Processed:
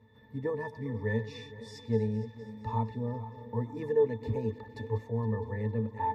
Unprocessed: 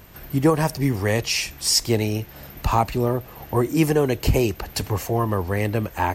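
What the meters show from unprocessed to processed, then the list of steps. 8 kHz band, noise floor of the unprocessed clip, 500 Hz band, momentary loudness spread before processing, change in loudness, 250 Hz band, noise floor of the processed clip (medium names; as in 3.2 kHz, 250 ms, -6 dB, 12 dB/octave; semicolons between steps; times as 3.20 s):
under -35 dB, -43 dBFS, -8.5 dB, 8 LU, -11.0 dB, -12.0 dB, -55 dBFS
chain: backward echo that repeats 232 ms, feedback 68%, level -13.5 dB; high-pass 190 Hz 6 dB/octave; pitch-class resonator A, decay 0.13 s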